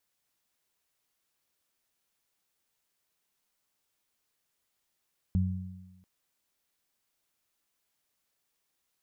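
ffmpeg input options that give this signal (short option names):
-f lavfi -i "aevalsrc='0.0708*pow(10,-3*t/1.07)*sin(2*PI*92.5*t)+0.0501*pow(10,-3*t/1.19)*sin(2*PI*185*t)':d=0.69:s=44100"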